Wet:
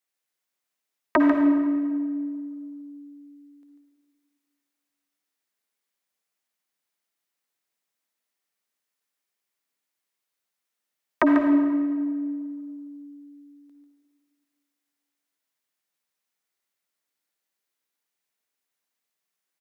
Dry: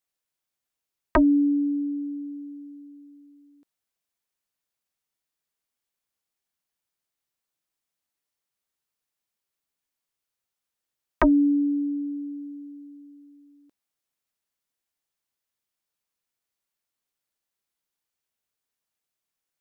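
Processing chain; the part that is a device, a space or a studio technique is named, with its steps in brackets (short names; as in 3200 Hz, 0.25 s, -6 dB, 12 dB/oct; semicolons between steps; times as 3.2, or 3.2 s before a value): PA in a hall (HPF 200 Hz 12 dB/oct; bell 2000 Hz +3.5 dB 0.45 oct; echo 0.144 s -8 dB; reverb RT60 1.8 s, pre-delay 48 ms, DRR 3.5 dB)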